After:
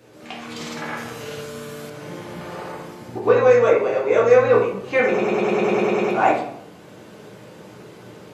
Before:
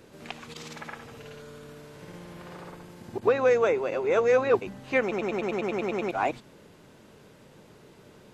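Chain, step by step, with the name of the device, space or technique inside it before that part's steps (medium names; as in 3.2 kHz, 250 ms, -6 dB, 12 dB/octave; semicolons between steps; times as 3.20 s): far laptop microphone (reverberation RT60 0.70 s, pre-delay 3 ms, DRR -4.5 dB; high-pass 100 Hz; level rider gain up to 7 dB); 0.97–1.90 s: treble shelf 4.3 kHz +8.5 dB; trim -1.5 dB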